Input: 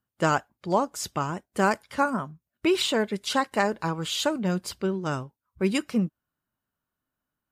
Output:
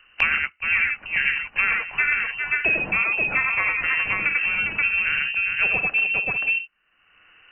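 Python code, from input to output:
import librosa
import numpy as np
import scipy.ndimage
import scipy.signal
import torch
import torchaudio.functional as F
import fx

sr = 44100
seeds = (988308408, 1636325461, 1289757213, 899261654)

y = fx.echo_multitap(x, sr, ms=(41, 86, 93, 400, 529, 587), db=(-10.5, -4.5, -4.5, -10.5, -5.0, -16.5))
y = fx.freq_invert(y, sr, carrier_hz=2900)
y = fx.band_squash(y, sr, depth_pct=100)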